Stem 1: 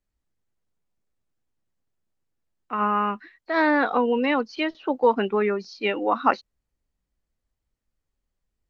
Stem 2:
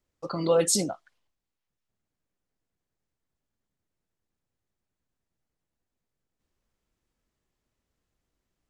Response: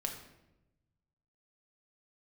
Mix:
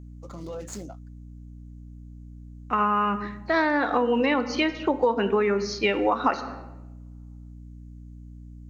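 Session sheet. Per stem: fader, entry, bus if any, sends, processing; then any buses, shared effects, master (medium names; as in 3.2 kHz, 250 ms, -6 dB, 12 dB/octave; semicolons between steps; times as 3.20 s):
+1.0 dB, 0.00 s, send -3.5 dB, none
-9.5 dB, 0.00 s, no send, median filter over 15 samples; peak limiter -20 dBFS, peak gain reduction 6.5 dB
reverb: on, RT60 0.95 s, pre-delay 5 ms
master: peaking EQ 6.6 kHz +11.5 dB 0.5 oct; hum 60 Hz, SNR 21 dB; compression 5:1, threshold -19 dBFS, peak gain reduction 10.5 dB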